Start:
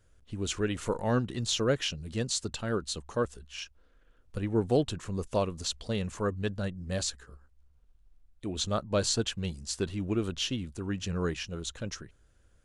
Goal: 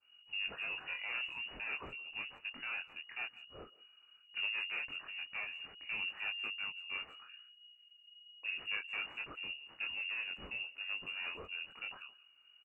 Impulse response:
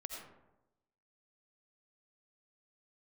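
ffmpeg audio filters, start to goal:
-filter_complex "[0:a]asoftclip=type=hard:threshold=-32dB,flanger=delay=19.5:depth=5.1:speed=0.46,lowpass=f=2.5k:t=q:w=0.5098,lowpass=f=2.5k:t=q:w=0.6013,lowpass=f=2.5k:t=q:w=0.9,lowpass=f=2.5k:t=q:w=2.563,afreqshift=-2900,asplit=2[a][b];[b]adelay=170,highpass=300,lowpass=3.4k,asoftclip=type=hard:threshold=-32dB,volume=-21dB[c];[a][c]amix=inputs=2:normalize=0,adynamicequalizer=threshold=0.00282:dfrequency=1500:dqfactor=0.7:tfrequency=1500:tqfactor=0.7:attack=5:release=100:ratio=0.375:range=2.5:mode=cutabove:tftype=highshelf"

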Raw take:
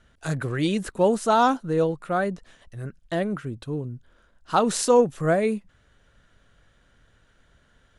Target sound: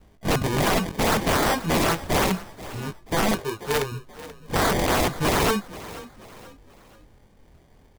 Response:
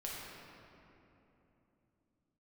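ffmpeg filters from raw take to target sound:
-filter_complex "[0:a]acrusher=samples=33:mix=1:aa=0.000001,asettb=1/sr,asplit=3[a][b][c];[a]atrim=end=3.334[d];[b]atrim=start=3.33:end=3.92,asetpts=PTS-STARTPTS,afade=t=in:d=0.004:c=qsin,afade=t=out:st=0.586:d=0.004:c=qsin,lowshelf=f=320:t=q:w=3:g=-8[e];[c]atrim=start=3.916[f];[d][e]acrossfade=d=0.004:c1=hsin:c2=qsin[g];[g][f]acrossfade=d=0.004:c1=qsin:c2=hsin,flanger=delay=19:depth=5.4:speed=0.33,aeval=exprs='(mod(16.8*val(0)+1,2)-1)/16.8':c=same,asplit=2[h][i];[i]asplit=3[j][k][l];[j]adelay=483,afreqshift=33,volume=-17dB[m];[k]adelay=966,afreqshift=66,volume=-24.7dB[n];[l]adelay=1449,afreqshift=99,volume=-32.5dB[o];[m][n][o]amix=inputs=3:normalize=0[p];[h][p]amix=inputs=2:normalize=0,volume=8.5dB"

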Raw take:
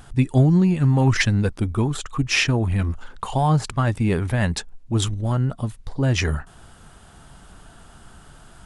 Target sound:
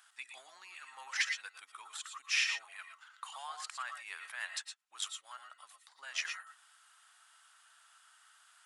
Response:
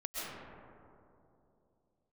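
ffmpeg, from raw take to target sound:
-filter_complex "[0:a]highpass=f=1.2k:w=0.5412,highpass=f=1.2k:w=1.3066[a];[1:a]atrim=start_sample=2205,afade=t=out:st=0.17:d=0.01,atrim=end_sample=7938[b];[a][b]afir=irnorm=-1:irlink=0,volume=-6dB"

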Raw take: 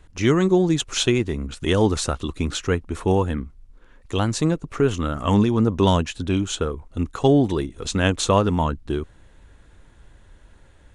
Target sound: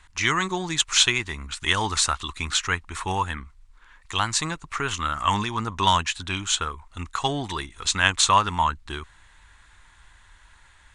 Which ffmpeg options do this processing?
-af "equalizer=f=125:t=o:w=1:g=-4,equalizer=f=250:t=o:w=1:g=-7,equalizer=f=500:t=o:w=1:g=-11,equalizer=f=1k:t=o:w=1:g=11,equalizer=f=2k:t=o:w=1:g=9,equalizer=f=4k:t=o:w=1:g=7,equalizer=f=8k:t=o:w=1:g=10,volume=-5dB"

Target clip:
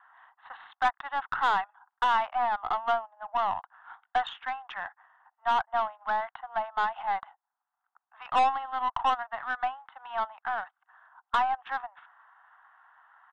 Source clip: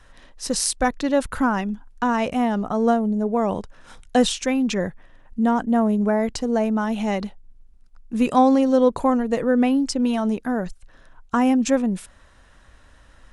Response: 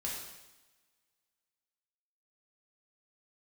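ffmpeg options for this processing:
-af "asuperpass=centerf=1700:order=20:qfactor=0.54,highshelf=f=1.9k:t=q:w=1.5:g=-9,adynamicsmooth=sensitivity=7.5:basefreq=2.5k,aresample=8000,asoftclip=type=tanh:threshold=-21dB,aresample=44100,aeval=exprs='0.112*(cos(1*acos(clip(val(0)/0.112,-1,1)))-cos(1*PI/2))+0.00631*(cos(4*acos(clip(val(0)/0.112,-1,1)))-cos(4*PI/2))':c=same,bandreject=f=2.4k:w=8.5,volume=2dB"

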